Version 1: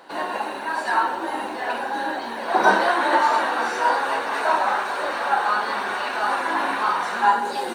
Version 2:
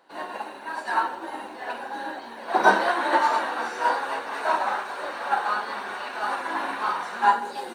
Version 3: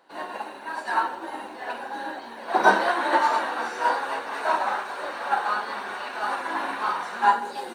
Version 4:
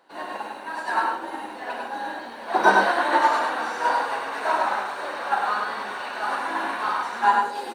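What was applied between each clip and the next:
expander for the loud parts 1.5 to 1, over −38 dBFS
no processing that can be heard
single-tap delay 101 ms −3.5 dB

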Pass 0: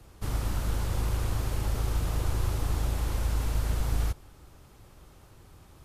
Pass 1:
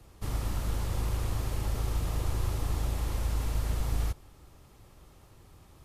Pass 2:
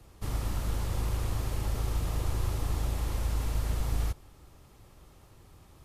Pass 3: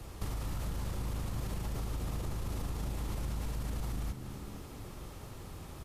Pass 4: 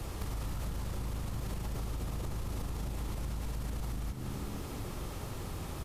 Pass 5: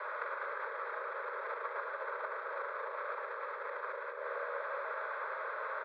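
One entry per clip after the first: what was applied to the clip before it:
notch filter 1,500 Hz, Q 15; level −2 dB
no processing that can be heard
brickwall limiter −28.5 dBFS, peak gain reduction 10 dB; downward compressor 10 to 1, threshold −42 dBFS, peak gain reduction 10.5 dB; echo with shifted repeats 240 ms, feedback 57%, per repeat +75 Hz, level −11 dB; level +8.5 dB
downward compressor 16 to 1, threshold −39 dBFS, peak gain reduction 8.5 dB; hard clipping −36 dBFS, distortion −29 dB; level +6.5 dB
high-frequency loss of the air 240 metres; phaser with its sweep stopped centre 1,100 Hz, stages 4; single-sideband voice off tune +280 Hz 270–3,000 Hz; level +13 dB

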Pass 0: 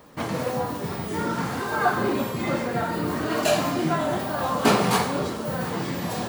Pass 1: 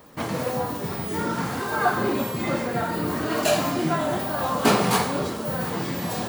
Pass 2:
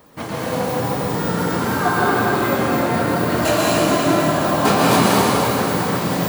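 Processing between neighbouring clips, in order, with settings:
high-shelf EQ 10,000 Hz +5 dB
convolution reverb RT60 4.1 s, pre-delay 108 ms, DRR −6 dB

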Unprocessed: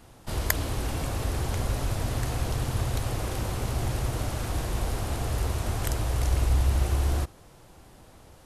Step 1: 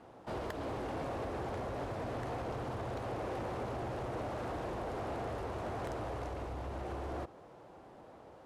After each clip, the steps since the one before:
downward compressor, threshold −25 dBFS, peak gain reduction 7.5 dB
resonant band-pass 580 Hz, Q 0.81
soft clipping −36 dBFS, distortion −15 dB
level +3 dB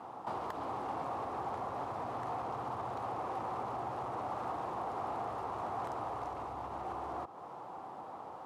downward compressor 2.5 to 1, threshold −48 dBFS, peak gain reduction 8 dB
high-pass filter 110 Hz 12 dB per octave
flat-topped bell 970 Hz +10.5 dB 1 octave
level +3 dB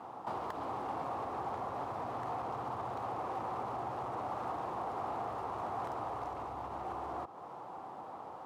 running median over 5 samples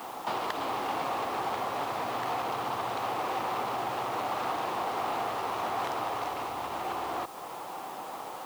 meter weighting curve D
in parallel at −9 dB: bit-depth reduction 8 bits, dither triangular
on the sum: level +4 dB

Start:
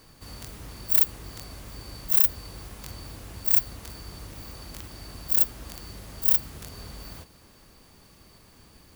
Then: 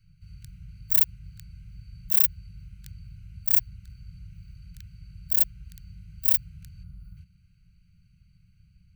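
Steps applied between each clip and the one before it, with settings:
adaptive Wiener filter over 25 samples
Chebyshev band-stop filter 180–1,500 Hz, order 5
gain on a spectral selection 0:06.83–0:07.17, 1,500–9,200 Hz −9 dB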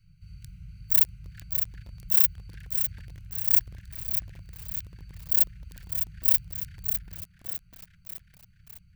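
delay with a band-pass on its return 398 ms, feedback 78%, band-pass 1,000 Hz, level −9 dB
feedback echo at a low word length 604 ms, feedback 55%, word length 7 bits, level −7 dB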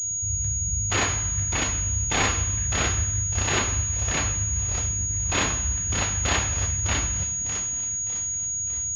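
wrap-around overflow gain 19 dB
convolution reverb RT60 1.0 s, pre-delay 3 ms, DRR −4 dB
switching amplifier with a slow clock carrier 6,700 Hz
level +1.5 dB

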